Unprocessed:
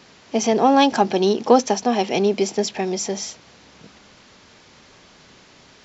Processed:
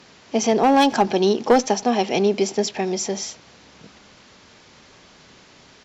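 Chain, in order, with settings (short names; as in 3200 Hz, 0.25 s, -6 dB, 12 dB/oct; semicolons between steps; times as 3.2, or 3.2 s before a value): one-sided clip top -8 dBFS; speakerphone echo 90 ms, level -23 dB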